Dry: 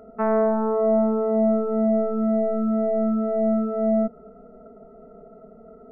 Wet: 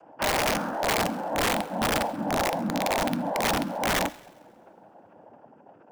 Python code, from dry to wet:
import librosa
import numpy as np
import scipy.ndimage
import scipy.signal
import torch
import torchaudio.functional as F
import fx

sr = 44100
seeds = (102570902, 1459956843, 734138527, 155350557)

y = fx.bass_treble(x, sr, bass_db=-5, treble_db=12)
y = fx.notch(y, sr, hz=510.0, q=12.0)
y = y + 0.88 * np.pad(y, (int(5.8 * sr / 1000.0), 0))[:len(y)]
y = fx.rider(y, sr, range_db=10, speed_s=2.0)
y = fx.noise_vocoder(y, sr, seeds[0], bands=8)
y = (np.mod(10.0 ** (12.5 / 20.0) * y + 1.0, 2.0) - 1.0) / 10.0 ** (12.5 / 20.0)
y = fx.echo_wet_highpass(y, sr, ms=134, feedback_pct=42, hz=1800.0, wet_db=-22.0)
y = fx.rev_double_slope(y, sr, seeds[1], early_s=0.74, late_s=2.5, knee_db=-19, drr_db=17.5)
y = y * 10.0 ** (-6.0 / 20.0)